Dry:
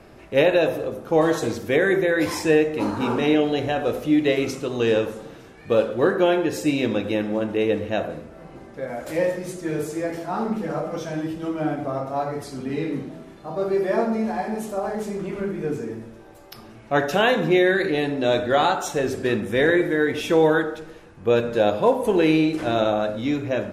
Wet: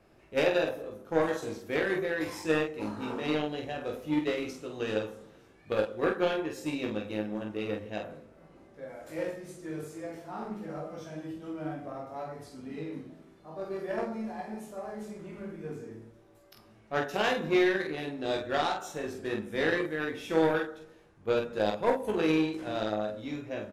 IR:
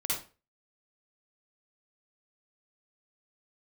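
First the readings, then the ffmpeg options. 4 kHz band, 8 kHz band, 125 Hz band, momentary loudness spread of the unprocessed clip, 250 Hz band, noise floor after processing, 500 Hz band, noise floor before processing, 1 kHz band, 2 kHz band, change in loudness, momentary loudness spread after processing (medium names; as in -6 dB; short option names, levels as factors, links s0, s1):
-8.5 dB, -11.5 dB, -11.5 dB, 11 LU, -10.5 dB, -59 dBFS, -10.5 dB, -45 dBFS, -9.5 dB, -8.5 dB, -10.0 dB, 14 LU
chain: -af "aeval=exprs='0.422*(cos(1*acos(clip(val(0)/0.422,-1,1)))-cos(1*PI/2))+0.0841*(cos(3*acos(clip(val(0)/0.422,-1,1)))-cos(3*PI/2))':c=same,aecho=1:1:19|47:0.531|0.596,volume=0.422"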